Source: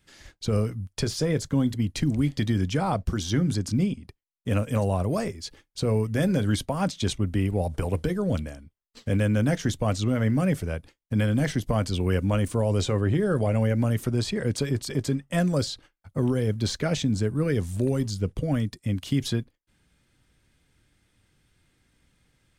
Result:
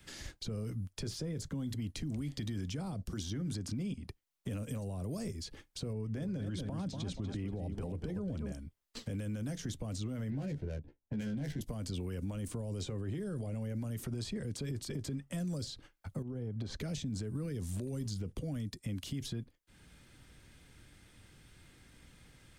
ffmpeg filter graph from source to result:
-filter_complex "[0:a]asettb=1/sr,asplit=3[a][b][c];[a]atrim=end=5.934[d];[b]atrim=start=5.93:end=8.52,asetpts=PTS-STARTPTS,afade=t=in:d=0.004:c=qsin,afade=t=out:st=2.586:d=0.004:c=qsin,aemphasis=mode=reproduction:type=75fm,aecho=1:1:239|478|717:0.316|0.0917|0.0266,atrim=end_sample=114219[e];[c]atrim=start=8.516[f];[d][e]acrossfade=d=0.004:c1=hsin:c2=qsin[g];[g][f]acrossfade=d=0.004:c1=qsin:c2=hsin,asettb=1/sr,asplit=3[h][i][j];[h]atrim=end=10.304[k];[i]atrim=start=10.3:end=11.61,asetpts=PTS-STARTPTS,afade=t=in:d=0.004:c=qsin,afade=t=out:st=1.306:d=0.004:c=qsin,adynamicsmooth=sensitivity=5:basefreq=900,asuperstop=centerf=1200:order=4:qfactor=4.8,asplit=2[l][m];[m]adelay=14,volume=-4dB[n];[l][n]amix=inputs=2:normalize=0,atrim=end_sample=57771[o];[j]atrim=start=11.606[p];[k][o]acrossfade=d=0.004:c1=hsin:c2=qsin[q];[q][p]acrossfade=d=0.004:c1=qsin:c2=hsin,asettb=1/sr,asplit=3[r][s][t];[r]atrim=end=16.224[u];[s]atrim=start=16.22:end=16.8,asetpts=PTS-STARTPTS,afade=t=in:d=0.004:c=qsin,afade=t=out:st=0.576:d=0.004:c=qsin,lowpass=f=1k:p=1,acompressor=threshold=-32dB:ratio=16:attack=3.2:release=140:knee=1:detection=peak[v];[t]atrim=start=16.796[w];[u][v]acrossfade=d=0.004:c1=hsin:c2=qsin[x];[x][w]acrossfade=d=0.004:c1=qsin:c2=hsin,acompressor=threshold=-50dB:ratio=1.5,alimiter=level_in=8.5dB:limit=-24dB:level=0:latency=1:release=45,volume=-8.5dB,acrossover=split=170|390|3800[y][z][aa][ab];[y]acompressor=threshold=-47dB:ratio=4[ac];[z]acompressor=threshold=-48dB:ratio=4[ad];[aa]acompressor=threshold=-59dB:ratio=4[ae];[ab]acompressor=threshold=-54dB:ratio=4[af];[ac][ad][ae][af]amix=inputs=4:normalize=0,volume=7dB"

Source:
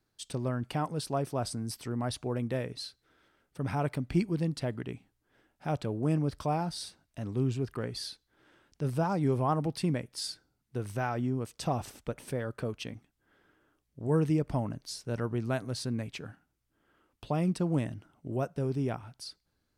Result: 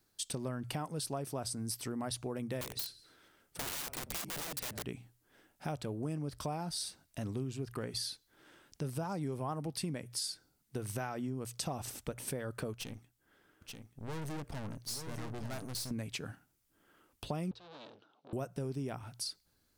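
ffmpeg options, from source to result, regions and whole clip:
-filter_complex "[0:a]asettb=1/sr,asplit=3[a][b][c];[a]atrim=end=2.614[d];[b]atrim=start=2.61:end=4.83,asetpts=PTS-STARTPTS,afade=t=in:d=0.004:c=qsin,afade=t=out:st=2.216:d=0.004:c=qsin,asplit=4[e][f][g][h];[f]adelay=92,afreqshift=-32,volume=-21dB[i];[g]adelay=184,afreqshift=-64,volume=-28.5dB[j];[h]adelay=276,afreqshift=-96,volume=-36.1dB[k];[e][i][j][k]amix=inputs=4:normalize=0,atrim=end_sample=97902,aeval=exprs='(mod(47.3*val(0)+1,2)-1)/47.3':c=same[l];[c]atrim=start=4.826[m];[d][l]acrossfade=d=0.004:c1=hsin:c2=qsin[n];[n][m]acrossfade=d=0.004:c1=qsin:c2=hsin,asettb=1/sr,asplit=3[o][p][q];[o]atrim=end=12.734[r];[p]atrim=start=12.73:end=15.91,asetpts=PTS-STARTPTS,afade=t=in:d=0.004:c=qsin,afade=t=out:st=3.176:d=0.004:c=qsin,aeval=exprs='(tanh(100*val(0)+0.65)-tanh(0.65))/100':c=same,aecho=1:1:883:0.473,atrim=end_sample=140238[s];[q]atrim=start=15.906[t];[r][s]acrossfade=d=0.004:c1=hsin:c2=qsin[u];[u][t]acrossfade=d=0.004:c1=qsin:c2=hsin,asettb=1/sr,asplit=3[v][w][x];[v]atrim=end=17.514[y];[w]atrim=start=17.51:end=18.33,asetpts=PTS-STARTPTS,afade=t=in:d=0.004:c=qsin,afade=t=out:st=0.816:d=0.004:c=qsin,aeval=exprs='(tanh(224*val(0)+0.75)-tanh(0.75))/224':c=same,highpass=380,equalizer=f=460:t=q:w=4:g=5,equalizer=f=800:t=q:w=4:g=3,equalizer=f=2k:t=q:w=4:g=-9,equalizer=f=3.8k:t=q:w=4:g=9,lowpass=f=4.5k:w=0.5412,lowpass=f=4.5k:w=1.3066[z];[x]atrim=start=18.326[aa];[y][z]acrossfade=d=0.004:c1=hsin:c2=qsin[ab];[ab][aa]acrossfade=d=0.004:c1=qsin:c2=hsin,highshelf=f=5.4k:g=11,bandreject=f=60:t=h:w=6,bandreject=f=120:t=h:w=6,acompressor=threshold=-37dB:ratio=5,volume=1.5dB"

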